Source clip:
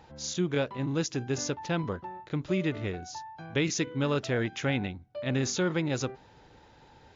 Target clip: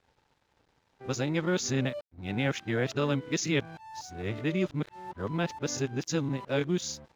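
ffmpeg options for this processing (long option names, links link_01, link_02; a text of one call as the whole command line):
ffmpeg -i in.wav -af "areverse,aeval=exprs='sgn(val(0))*max(abs(val(0))-0.00168,0)':channel_layout=same,agate=range=-6dB:threshold=-55dB:ratio=16:detection=peak" out.wav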